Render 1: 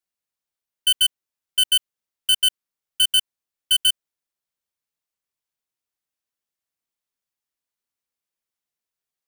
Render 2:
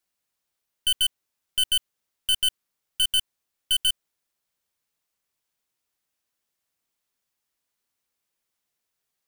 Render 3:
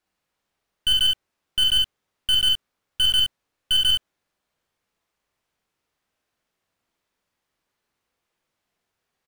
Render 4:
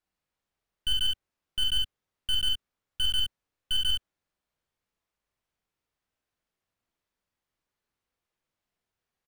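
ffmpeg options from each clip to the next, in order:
-af "aeval=exprs='(tanh(22.4*val(0)+0.2)-tanh(0.2))/22.4':c=same,volume=7dB"
-filter_complex "[0:a]lowpass=f=1.9k:p=1,asplit=2[a][b];[b]aecho=0:1:45|66:0.596|0.596[c];[a][c]amix=inputs=2:normalize=0,volume=7.5dB"
-af "lowshelf=f=110:g=7.5,volume=-8.5dB"

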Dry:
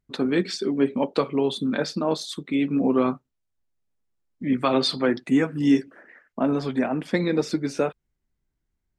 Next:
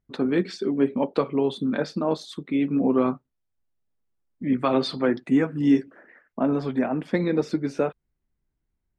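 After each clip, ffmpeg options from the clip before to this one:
-af "highshelf=f=3.2k:g=-11"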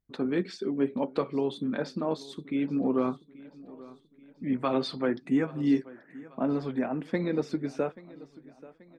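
-af "aecho=1:1:833|1666|2499|3332:0.1|0.048|0.023|0.0111,volume=-5.5dB"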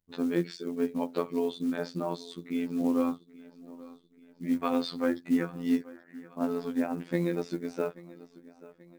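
-af "afftfilt=real='hypot(re,im)*cos(PI*b)':imag='0':win_size=2048:overlap=0.75,acrusher=bits=7:mode=log:mix=0:aa=0.000001,volume=2dB"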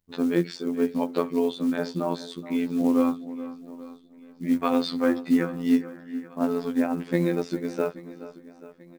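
-filter_complex "[0:a]asplit=2[a][b];[b]adelay=425.7,volume=-15dB,highshelf=f=4k:g=-9.58[c];[a][c]amix=inputs=2:normalize=0,volume=5dB"

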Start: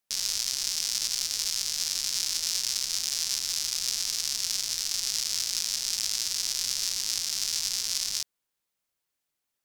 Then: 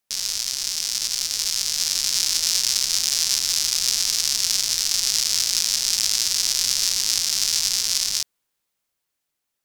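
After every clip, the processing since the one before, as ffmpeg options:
-af "dynaudnorm=f=360:g=9:m=5dB,volume=3.5dB"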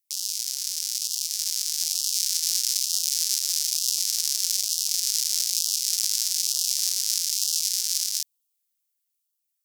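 -af "aderivative,afftfilt=real='re*(1-between(b*sr/1024,490*pow(1900/490,0.5+0.5*sin(2*PI*1.1*pts/sr))/1.41,490*pow(1900/490,0.5+0.5*sin(2*PI*1.1*pts/sr))*1.41))':imag='im*(1-between(b*sr/1024,490*pow(1900/490,0.5+0.5*sin(2*PI*1.1*pts/sr))/1.41,490*pow(1900/490,0.5+0.5*sin(2*PI*1.1*pts/sr))*1.41))':win_size=1024:overlap=0.75,volume=-2dB"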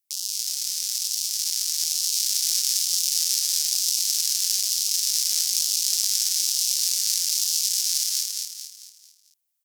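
-af "aecho=1:1:222|444|666|888|1110:0.668|0.287|0.124|0.0531|0.0228"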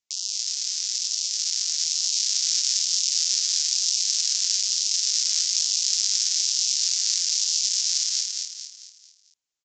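-af "aresample=16000,aresample=44100,volume=1.5dB"

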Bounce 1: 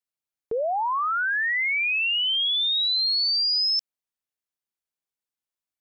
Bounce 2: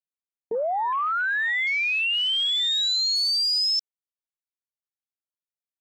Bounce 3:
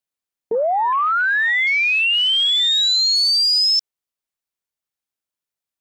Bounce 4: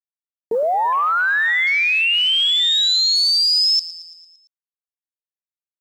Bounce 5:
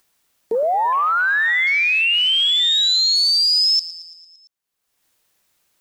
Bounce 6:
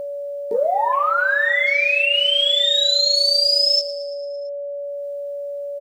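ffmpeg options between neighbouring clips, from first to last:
-af "afwtdn=0.0178"
-af "acontrast=76"
-af "acrusher=bits=8:mix=0:aa=0.000001,aecho=1:1:113|226|339|452|565|678:0.15|0.0883|0.0521|0.0307|0.0181|0.0107"
-af "acompressor=mode=upward:threshold=-41dB:ratio=2.5"
-filter_complex "[0:a]asplit=2[a][b];[b]adelay=19,volume=-4dB[c];[a][c]amix=inputs=2:normalize=0,aeval=exprs='val(0)+0.0708*sin(2*PI*570*n/s)':c=same,volume=-2.5dB"

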